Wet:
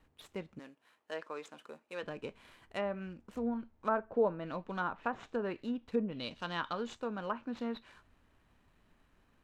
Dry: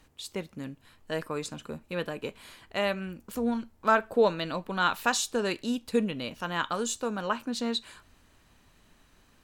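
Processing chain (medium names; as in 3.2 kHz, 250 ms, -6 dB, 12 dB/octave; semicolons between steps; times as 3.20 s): median filter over 9 samples; 0.59–2.03 s: high-pass 430 Hz 12 dB/octave; low-pass that closes with the level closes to 1.1 kHz, closed at -23 dBFS; 6.11–6.97 s: peaking EQ 4.1 kHz +14.5 dB -> +8 dB 0.84 oct; trim -6.5 dB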